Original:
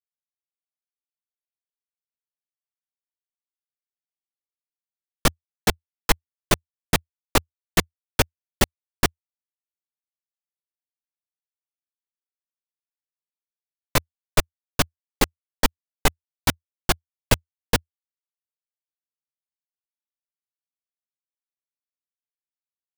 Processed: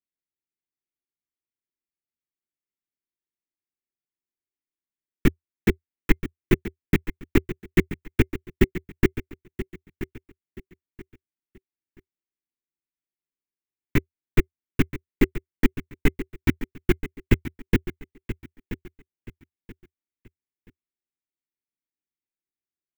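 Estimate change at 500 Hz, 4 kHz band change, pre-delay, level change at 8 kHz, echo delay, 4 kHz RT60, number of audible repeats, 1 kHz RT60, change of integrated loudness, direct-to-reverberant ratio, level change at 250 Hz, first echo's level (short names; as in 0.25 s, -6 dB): +1.0 dB, -13.0 dB, none, -18.0 dB, 0.979 s, none, 3, none, -1.5 dB, none, +6.0 dB, -13.0 dB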